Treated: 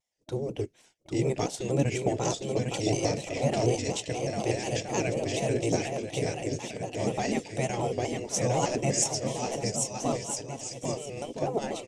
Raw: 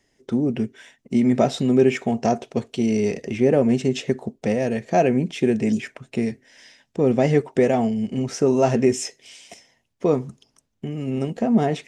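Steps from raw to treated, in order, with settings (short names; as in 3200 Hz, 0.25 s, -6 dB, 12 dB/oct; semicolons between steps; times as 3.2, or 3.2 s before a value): dynamic EQ 7500 Hz, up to +6 dB, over -51 dBFS, Q 1.5; transient shaper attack -1 dB, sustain -6 dB; gate -53 dBFS, range -15 dB; bell 1500 Hz -11.5 dB 1.3 oct; on a send: bouncing-ball echo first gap 0.8 s, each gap 0.65×, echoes 5; on the sum: spectral gate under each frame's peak -10 dB weak; shaped vibrato square 4.1 Hz, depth 100 cents; gain +2 dB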